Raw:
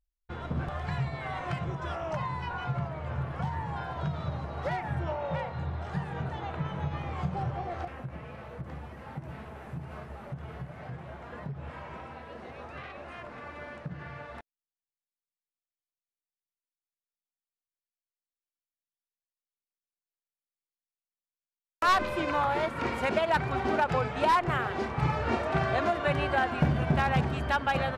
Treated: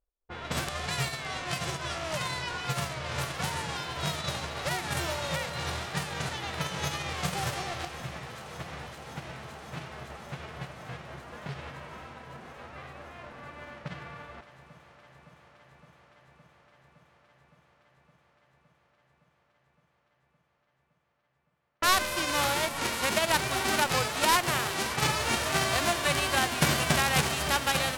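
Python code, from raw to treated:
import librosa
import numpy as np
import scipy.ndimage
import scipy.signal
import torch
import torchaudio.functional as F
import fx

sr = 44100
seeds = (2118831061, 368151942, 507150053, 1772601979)

y = fx.envelope_flatten(x, sr, power=0.3)
y = fx.env_lowpass(y, sr, base_hz=800.0, full_db=-27.5)
y = fx.echo_alternate(y, sr, ms=282, hz=1000.0, feedback_pct=90, wet_db=-14)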